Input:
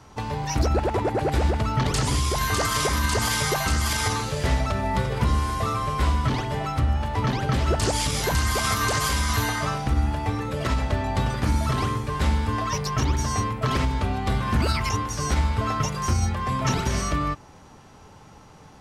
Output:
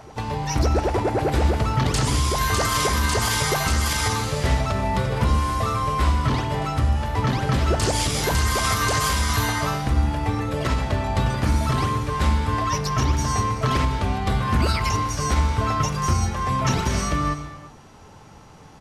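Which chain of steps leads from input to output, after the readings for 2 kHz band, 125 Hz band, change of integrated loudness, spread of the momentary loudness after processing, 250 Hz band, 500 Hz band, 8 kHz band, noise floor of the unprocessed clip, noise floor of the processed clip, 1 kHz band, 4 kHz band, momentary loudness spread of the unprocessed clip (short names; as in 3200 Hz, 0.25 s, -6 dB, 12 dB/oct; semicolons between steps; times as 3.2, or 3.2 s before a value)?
+1.5 dB, +2.0 dB, +2.0 dB, 3 LU, +2.0 dB, +2.0 dB, +2.0 dB, -48 dBFS, -46 dBFS, +2.5 dB, +2.0 dB, 3 LU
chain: downsampling 32000 Hz; reverse echo 1.178 s -22.5 dB; non-linear reverb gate 0.39 s flat, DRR 10.5 dB; gain +1.5 dB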